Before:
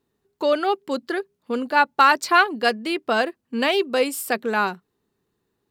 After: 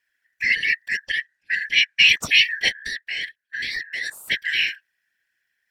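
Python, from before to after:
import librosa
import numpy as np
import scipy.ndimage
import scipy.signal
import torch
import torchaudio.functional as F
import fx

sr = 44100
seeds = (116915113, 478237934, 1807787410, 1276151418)

y = fx.band_shuffle(x, sr, order='4123')
y = fx.lowpass(y, sr, hz=9800.0, slope=12, at=(1.07, 2.07))
y = fx.level_steps(y, sr, step_db=14, at=(2.68, 4.28), fade=0.02)
y = fx.whisperise(y, sr, seeds[0])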